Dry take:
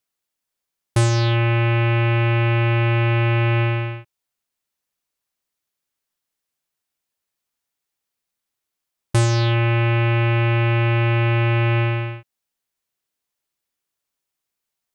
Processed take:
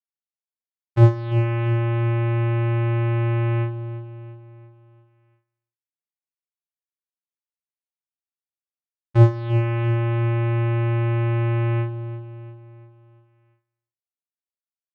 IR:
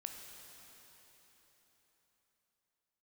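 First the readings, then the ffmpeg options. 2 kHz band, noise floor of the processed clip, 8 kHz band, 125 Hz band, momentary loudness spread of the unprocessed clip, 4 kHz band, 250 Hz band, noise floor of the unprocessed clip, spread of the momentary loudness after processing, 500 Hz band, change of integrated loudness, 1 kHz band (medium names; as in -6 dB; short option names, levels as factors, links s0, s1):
-11.0 dB, under -85 dBFS, under -25 dB, -1.5 dB, 6 LU, under -10 dB, -1.5 dB, -83 dBFS, 16 LU, -2.5 dB, -2.5 dB, -6.0 dB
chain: -filter_complex "[0:a]bandreject=f=54.12:t=h:w=4,bandreject=f=108.24:t=h:w=4,bandreject=f=162.36:t=h:w=4,bandreject=f=216.48:t=h:w=4,bandreject=f=270.6:t=h:w=4,bandreject=f=324.72:t=h:w=4,bandreject=f=378.84:t=h:w=4,bandreject=f=432.96:t=h:w=4,bandreject=f=487.08:t=h:w=4,bandreject=f=541.2:t=h:w=4,bandreject=f=595.32:t=h:w=4,agate=range=0.0178:threshold=0.178:ratio=16:detection=peak,lowpass=2300,acrossover=split=790[s0][s1];[s1]alimiter=level_in=4.22:limit=0.0631:level=0:latency=1:release=439,volume=0.237[s2];[s0][s2]amix=inputs=2:normalize=0,aecho=1:1:343|686|1029|1372|1715:0.251|0.118|0.0555|0.0261|0.0123,asplit=2[s3][s4];[1:a]atrim=start_sample=2205,atrim=end_sample=3969[s5];[s4][s5]afir=irnorm=-1:irlink=0,volume=1.58[s6];[s3][s6]amix=inputs=2:normalize=0,volume=2.24"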